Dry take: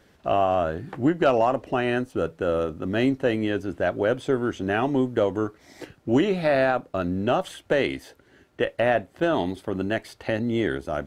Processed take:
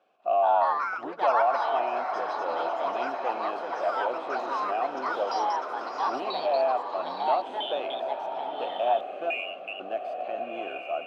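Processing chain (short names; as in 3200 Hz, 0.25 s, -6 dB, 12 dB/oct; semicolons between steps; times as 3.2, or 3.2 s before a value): HPF 190 Hz 12 dB/oct; 9.3–9.8 inverted band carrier 3100 Hz; in parallel at -5.5 dB: hard clip -23.5 dBFS, distortion -7 dB; on the sum: vowel filter a; on a send: diffused feedback echo 1.459 s, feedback 52%, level -6 dB; on the sum: echoes that change speed 0.221 s, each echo +4 st, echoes 3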